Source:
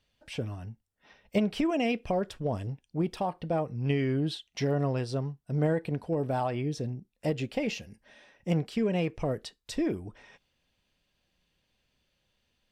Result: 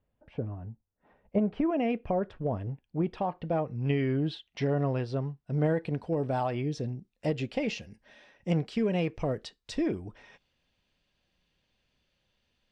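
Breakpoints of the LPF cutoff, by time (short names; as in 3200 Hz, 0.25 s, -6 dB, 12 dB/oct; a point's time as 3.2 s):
1.39 s 1000 Hz
1.8 s 1800 Hz
2.59 s 1800 Hz
3.56 s 3400 Hz
5.3 s 3400 Hz
5.96 s 6200 Hz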